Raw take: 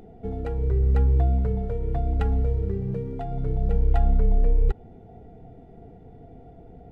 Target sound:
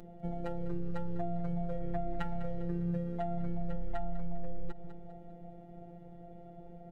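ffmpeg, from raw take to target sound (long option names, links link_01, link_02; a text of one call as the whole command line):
ffmpeg -i in.wav -filter_complex "[0:a]asettb=1/sr,asplit=3[link_01][link_02][link_03];[link_01]atrim=end=1.724[link_04];[link_02]atrim=start=1.72:end=3.99,asetpts=PTS-STARTPTS,afade=type=in:duration=0.004:curve=qsin,afade=type=out:start_time=2.266:duration=0.004:curve=qsin,equalizer=frequency=1800:width_type=o:width=0.77:gain=5[link_05];[link_03]atrim=start=3.986[link_06];[link_04][link_05]acrossfade=duration=0.004:curve1=hsin:curve2=qsin[link_07];[link_07][link_06]acrossfade=duration=0.004:curve1=qsin:curve2=hsin,aecho=1:1:200|400|600|800:0.168|0.0705|0.0296|0.0124,afftfilt=real='hypot(re,im)*cos(PI*b)':imag='0':win_size=1024:overlap=0.75,acompressor=threshold=-28dB:ratio=5" out.wav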